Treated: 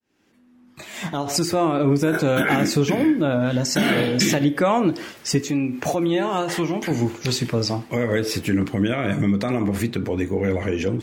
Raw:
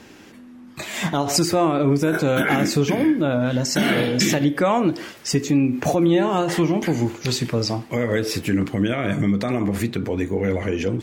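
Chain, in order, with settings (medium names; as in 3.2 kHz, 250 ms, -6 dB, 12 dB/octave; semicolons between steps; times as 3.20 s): fade-in on the opening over 1.91 s; 5.41–6.91 s: bass shelf 470 Hz -6 dB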